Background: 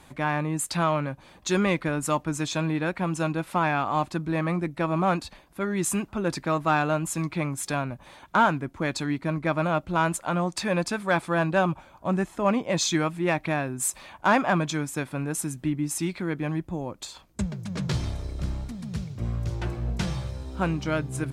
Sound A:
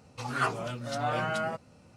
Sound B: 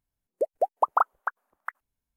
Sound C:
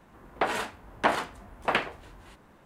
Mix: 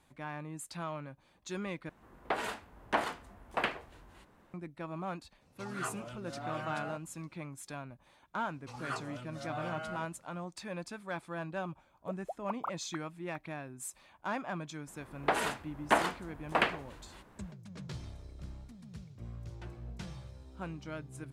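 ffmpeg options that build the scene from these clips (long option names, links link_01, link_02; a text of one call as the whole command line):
ffmpeg -i bed.wav -i cue0.wav -i cue1.wav -i cue2.wav -filter_complex "[3:a]asplit=2[link_01][link_02];[1:a]asplit=2[link_03][link_04];[0:a]volume=-15.5dB,asplit=2[link_05][link_06];[link_05]atrim=end=1.894[link_07];[link_01]atrim=end=2.65,asetpts=PTS-STARTPTS,volume=-6.5dB[link_08];[link_06]atrim=start=4.536[link_09];[link_03]atrim=end=1.96,asetpts=PTS-STARTPTS,volume=-10.5dB,afade=type=in:duration=0.004:curve=hsin,afade=type=out:start_time=1.956:duration=0.004:curve=hsin,adelay=238581S[link_10];[link_04]atrim=end=1.96,asetpts=PTS-STARTPTS,volume=-10.5dB,afade=type=in:duration=0.004:curve=hsin,afade=type=out:start_time=1.956:duration=0.004:curve=hsin,adelay=8490[link_11];[2:a]atrim=end=2.16,asetpts=PTS-STARTPTS,volume=-16.5dB,afade=type=in:duration=0.004:curve=hsin,afade=type=out:start_time=2.156:duration=0.004:curve=hsin,adelay=11670[link_12];[link_02]atrim=end=2.65,asetpts=PTS-STARTPTS,volume=-2.5dB,afade=type=in:duration=0.004:curve=hsin,afade=type=out:start_time=2.646:duration=0.004:curve=hsin,adelay=14870[link_13];[link_07][link_08]acrossfade=duration=0.004:curve1=hsin:curve2=hsin[link_14];[link_14][link_09]acrossfade=duration=0.004:curve1=hsin:curve2=hsin[link_15];[link_15][link_10][link_11][link_12][link_13]amix=inputs=5:normalize=0" out.wav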